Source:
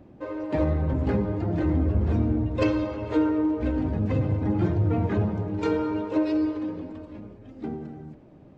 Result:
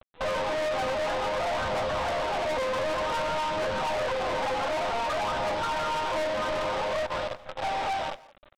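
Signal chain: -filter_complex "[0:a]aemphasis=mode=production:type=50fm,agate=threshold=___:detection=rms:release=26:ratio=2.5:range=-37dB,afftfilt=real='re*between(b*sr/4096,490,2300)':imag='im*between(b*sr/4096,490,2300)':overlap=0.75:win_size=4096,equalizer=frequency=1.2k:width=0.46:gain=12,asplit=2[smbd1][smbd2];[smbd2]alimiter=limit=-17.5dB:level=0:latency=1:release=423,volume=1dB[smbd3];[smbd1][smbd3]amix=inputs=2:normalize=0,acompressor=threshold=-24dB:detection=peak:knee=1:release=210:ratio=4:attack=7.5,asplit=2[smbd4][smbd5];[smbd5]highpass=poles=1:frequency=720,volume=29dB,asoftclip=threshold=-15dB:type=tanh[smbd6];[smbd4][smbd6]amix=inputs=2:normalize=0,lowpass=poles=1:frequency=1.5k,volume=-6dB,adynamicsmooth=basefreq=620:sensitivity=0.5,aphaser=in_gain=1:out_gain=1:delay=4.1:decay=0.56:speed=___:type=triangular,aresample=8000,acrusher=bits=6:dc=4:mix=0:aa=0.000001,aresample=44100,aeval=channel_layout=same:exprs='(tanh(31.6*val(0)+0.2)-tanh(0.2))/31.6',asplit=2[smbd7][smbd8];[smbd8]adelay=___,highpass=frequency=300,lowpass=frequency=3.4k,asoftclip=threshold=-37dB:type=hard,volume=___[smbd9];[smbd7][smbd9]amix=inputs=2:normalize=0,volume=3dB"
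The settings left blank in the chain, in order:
-40dB, 0.54, 170, -15dB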